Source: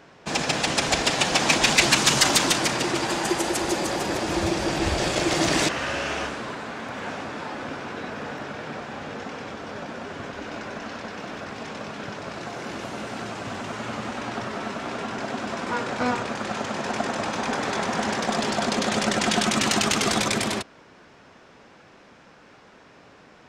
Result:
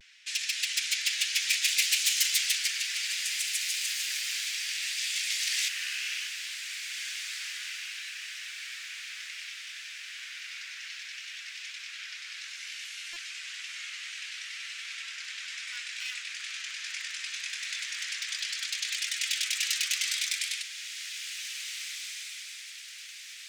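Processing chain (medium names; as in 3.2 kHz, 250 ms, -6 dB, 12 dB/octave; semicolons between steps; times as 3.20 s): one-sided wavefolder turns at -18 dBFS; steep high-pass 2 kHz 36 dB/octave; in parallel at +2.5 dB: compression, threshold -42 dBFS, peak gain reduction 22.5 dB; on the sum: vibrato 0.64 Hz 47 cents; flange 0.26 Hz, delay 4.4 ms, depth 9.6 ms, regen -62%; on a send: echo that smears into a reverb 1829 ms, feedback 45%, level -8 dB; on the sum: buffer glitch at 13.13 s, samples 128, times 10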